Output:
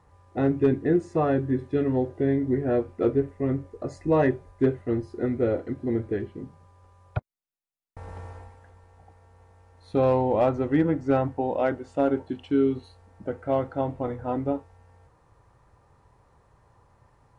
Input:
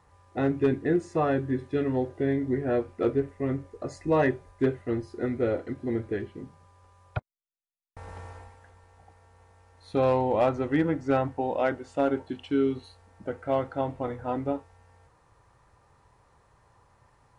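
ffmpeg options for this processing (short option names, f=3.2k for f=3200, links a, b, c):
-af "tiltshelf=f=970:g=3.5"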